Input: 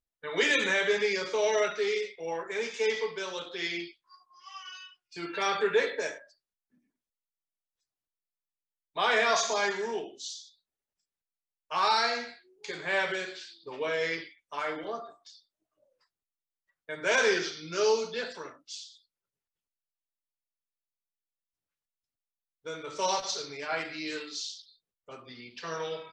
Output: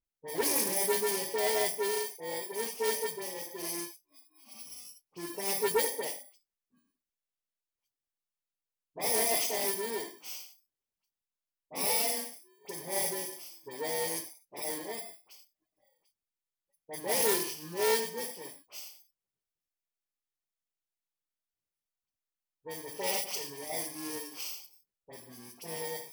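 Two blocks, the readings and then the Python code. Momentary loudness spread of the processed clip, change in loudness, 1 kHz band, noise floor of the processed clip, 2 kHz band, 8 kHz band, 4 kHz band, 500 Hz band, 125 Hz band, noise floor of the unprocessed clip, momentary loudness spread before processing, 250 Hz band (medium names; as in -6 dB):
17 LU, -2.0 dB, -6.0 dB, under -85 dBFS, -9.5 dB, +6.0 dB, -4.0 dB, -4.0 dB, -1.0 dB, under -85 dBFS, 19 LU, -2.0 dB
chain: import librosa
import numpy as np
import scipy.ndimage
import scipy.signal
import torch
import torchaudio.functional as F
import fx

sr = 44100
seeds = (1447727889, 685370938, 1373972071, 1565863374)

y = fx.bit_reversed(x, sr, seeds[0], block=32)
y = fx.dispersion(y, sr, late='highs', ms=50.0, hz=2200.0)
y = fx.doppler_dist(y, sr, depth_ms=0.13)
y = y * 10.0 ** (-1.5 / 20.0)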